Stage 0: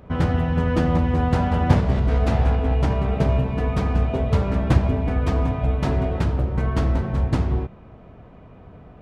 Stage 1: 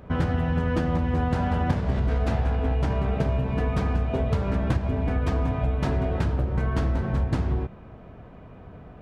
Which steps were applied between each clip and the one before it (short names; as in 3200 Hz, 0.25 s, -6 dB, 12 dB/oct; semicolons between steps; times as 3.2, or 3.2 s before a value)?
compressor, threshold -20 dBFS, peak gain reduction 11 dB; bell 1600 Hz +3.5 dB 0.22 oct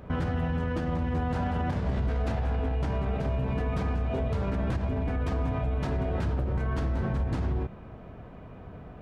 limiter -21 dBFS, peak gain reduction 10 dB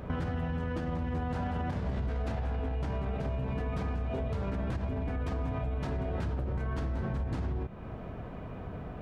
compressor 2.5:1, threshold -38 dBFS, peak gain reduction 9.5 dB; gain +4 dB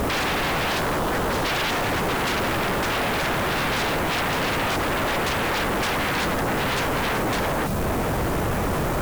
spectral delete 0.78–1.44, 580–2100 Hz; requantised 10-bit, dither triangular; sine folder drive 19 dB, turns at -22.5 dBFS; gain +2 dB